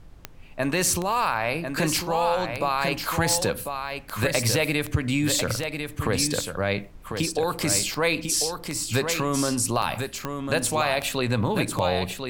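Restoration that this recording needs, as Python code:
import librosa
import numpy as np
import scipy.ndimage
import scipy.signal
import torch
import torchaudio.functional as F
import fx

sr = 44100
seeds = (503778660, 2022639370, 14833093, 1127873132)

y = fx.fix_declick_ar(x, sr, threshold=10.0)
y = fx.fix_interpolate(y, sr, at_s=(7.79, 9.82), length_ms=3.3)
y = fx.noise_reduce(y, sr, print_start_s=0.01, print_end_s=0.51, reduce_db=30.0)
y = fx.fix_echo_inverse(y, sr, delay_ms=1047, level_db=-6.5)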